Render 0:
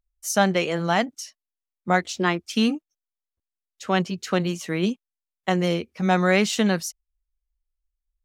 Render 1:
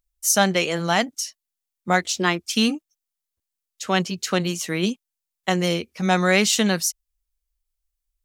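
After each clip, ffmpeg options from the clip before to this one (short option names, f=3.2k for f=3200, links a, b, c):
-af "highshelf=f=3.3k:g=10.5"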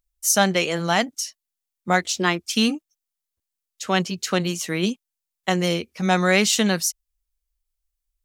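-af anull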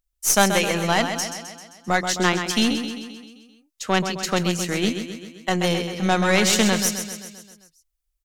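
-af "aecho=1:1:131|262|393|524|655|786|917:0.398|0.231|0.134|0.0777|0.0451|0.0261|0.0152,aeval=exprs='0.75*(cos(1*acos(clip(val(0)/0.75,-1,1)))-cos(1*PI/2))+0.106*(cos(4*acos(clip(val(0)/0.75,-1,1)))-cos(4*PI/2))':c=same"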